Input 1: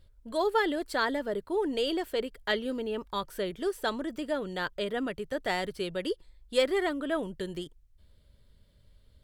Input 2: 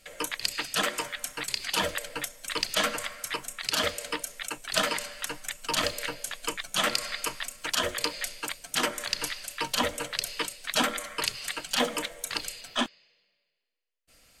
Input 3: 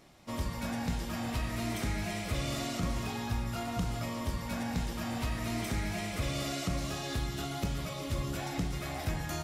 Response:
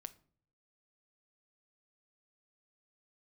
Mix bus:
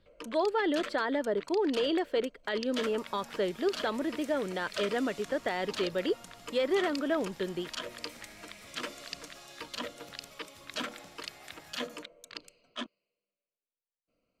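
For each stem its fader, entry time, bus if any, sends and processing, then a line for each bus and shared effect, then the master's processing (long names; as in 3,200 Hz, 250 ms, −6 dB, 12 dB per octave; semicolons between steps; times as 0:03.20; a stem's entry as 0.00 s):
+2.5 dB, 0.00 s, bus A, no send, no echo send, high-shelf EQ 5,300 Hz −10.5 dB
−8.5 dB, 0.00 s, bus A, no send, no echo send, adaptive Wiener filter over 25 samples; parametric band 820 Hz −14 dB 0.28 octaves
−11.5 dB, 2.45 s, no bus, no send, echo send −4 dB, high-pass filter 830 Hz 6 dB per octave
bus A: 0.0 dB, three-way crossover with the lows and the highs turned down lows −14 dB, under 160 Hz, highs −13 dB, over 6,400 Hz; brickwall limiter −20.5 dBFS, peak gain reduction 8.5 dB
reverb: not used
echo: single-tap delay 154 ms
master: no processing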